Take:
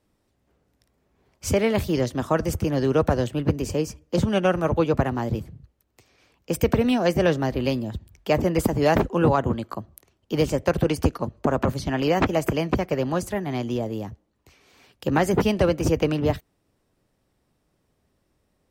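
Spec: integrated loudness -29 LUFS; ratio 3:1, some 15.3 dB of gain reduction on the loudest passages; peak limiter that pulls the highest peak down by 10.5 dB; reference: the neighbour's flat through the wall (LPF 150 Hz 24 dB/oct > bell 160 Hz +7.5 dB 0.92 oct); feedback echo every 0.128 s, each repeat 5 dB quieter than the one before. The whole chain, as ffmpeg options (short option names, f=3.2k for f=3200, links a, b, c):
-af "acompressor=threshold=-37dB:ratio=3,alimiter=level_in=6.5dB:limit=-24dB:level=0:latency=1,volume=-6.5dB,lowpass=f=150:w=0.5412,lowpass=f=150:w=1.3066,equalizer=f=160:t=o:w=0.92:g=7.5,aecho=1:1:128|256|384|512|640|768|896:0.562|0.315|0.176|0.0988|0.0553|0.031|0.0173,volume=13.5dB"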